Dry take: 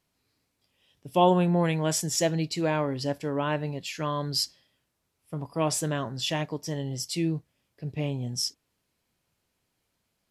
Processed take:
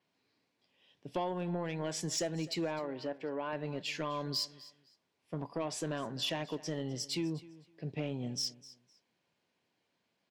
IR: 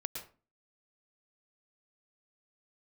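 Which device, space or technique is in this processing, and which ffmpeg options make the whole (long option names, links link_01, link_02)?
AM radio: -filter_complex "[0:a]highpass=190,lowpass=4400,bandreject=frequency=1300:width=10,acompressor=threshold=-30dB:ratio=8,asoftclip=type=tanh:threshold=-25.5dB,asettb=1/sr,asplit=3[link_01][link_02][link_03];[link_01]atrim=end=2.794[link_04];[link_02]atrim=start=2.79:end=3.53,asetpts=PTS-STARTPTS,afade=type=in:duration=0.004:curve=qsin,afade=type=out:start_time=0.736:duration=0.004:curve=qsin,bass=frequency=250:gain=-9,treble=frequency=4000:gain=-15[link_05];[link_03]atrim=start=3.526[link_06];[link_04][link_05]acrossfade=duration=0.004:curve1=hsin:curve2=qsin[link_07];[link_07][link_06]acrossfade=duration=0.004:curve1=qsin:curve2=hsin,aecho=1:1:255|510:0.112|0.0236,adynamicequalizer=threshold=0.00224:dfrequency=7600:dqfactor=0.7:tfrequency=7600:tqfactor=0.7:attack=5:release=100:ratio=0.375:range=3.5:mode=boostabove:tftype=highshelf"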